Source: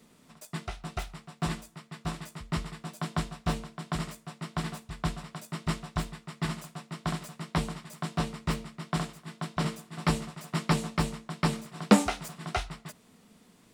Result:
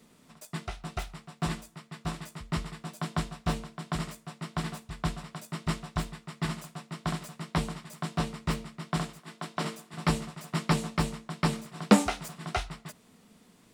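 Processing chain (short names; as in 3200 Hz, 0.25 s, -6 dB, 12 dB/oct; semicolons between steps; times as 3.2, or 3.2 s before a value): 9.2–9.94 HPF 220 Hz 12 dB/oct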